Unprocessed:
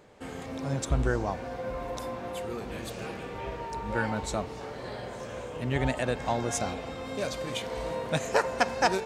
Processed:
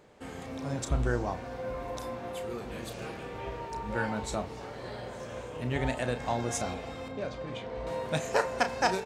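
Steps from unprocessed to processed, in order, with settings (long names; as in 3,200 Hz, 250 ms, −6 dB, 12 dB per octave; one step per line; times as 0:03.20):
0:07.08–0:07.87: head-to-tape spacing loss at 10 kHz 23 dB
double-tracking delay 33 ms −10 dB
level −2.5 dB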